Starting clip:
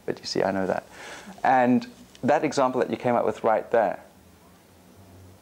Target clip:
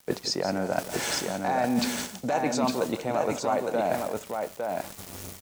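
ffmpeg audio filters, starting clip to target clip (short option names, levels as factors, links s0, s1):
-filter_complex "[0:a]highpass=f=81:p=1,bass=f=250:g=3,treble=f=4000:g=10,aeval=exprs='val(0)*gte(abs(val(0)),0.00668)':c=same,areverse,acompressor=threshold=0.0224:ratio=10,areverse,bandreject=f=1600:w=23,asplit=2[s0][s1];[s1]aecho=0:1:172|858:0.251|0.631[s2];[s0][s2]amix=inputs=2:normalize=0,volume=2.82"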